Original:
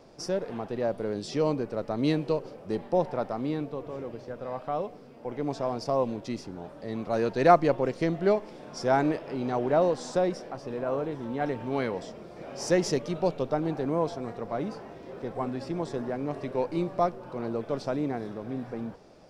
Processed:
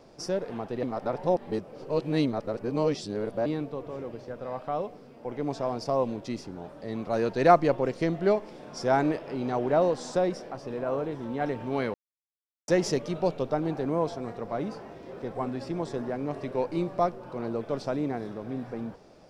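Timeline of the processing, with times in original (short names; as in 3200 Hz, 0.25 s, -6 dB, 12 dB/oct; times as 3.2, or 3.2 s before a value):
0.83–3.46 reverse
11.94–12.68 mute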